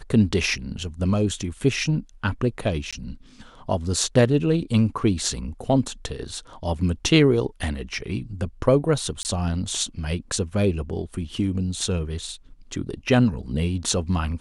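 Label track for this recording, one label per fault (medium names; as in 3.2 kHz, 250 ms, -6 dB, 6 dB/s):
2.910000	2.930000	dropout 16 ms
9.230000	9.250000	dropout 19 ms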